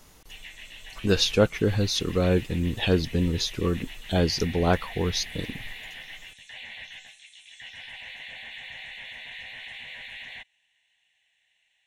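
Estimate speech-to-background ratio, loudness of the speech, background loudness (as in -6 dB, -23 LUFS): 15.0 dB, -25.5 LUFS, -40.5 LUFS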